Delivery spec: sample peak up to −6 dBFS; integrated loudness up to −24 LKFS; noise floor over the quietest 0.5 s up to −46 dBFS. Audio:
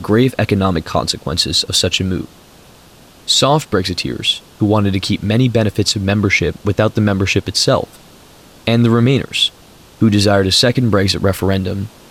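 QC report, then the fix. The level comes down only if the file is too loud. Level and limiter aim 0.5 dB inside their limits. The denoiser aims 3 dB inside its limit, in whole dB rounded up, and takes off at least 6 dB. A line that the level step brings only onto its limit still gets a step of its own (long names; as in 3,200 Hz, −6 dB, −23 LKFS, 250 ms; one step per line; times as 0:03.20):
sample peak −2.0 dBFS: out of spec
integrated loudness −15.0 LKFS: out of spec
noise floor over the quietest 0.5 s −43 dBFS: out of spec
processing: level −9.5 dB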